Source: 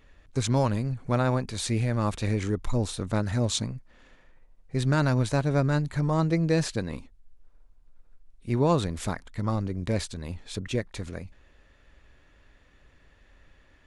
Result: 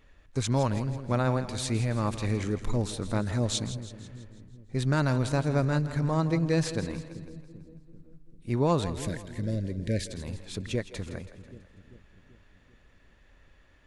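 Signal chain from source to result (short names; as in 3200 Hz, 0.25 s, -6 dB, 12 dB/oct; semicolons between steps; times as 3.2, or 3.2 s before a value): 9.01–10.06 elliptic band-stop 610–1600 Hz; split-band echo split 410 Hz, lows 0.39 s, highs 0.164 s, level -12.5 dB; gain -2 dB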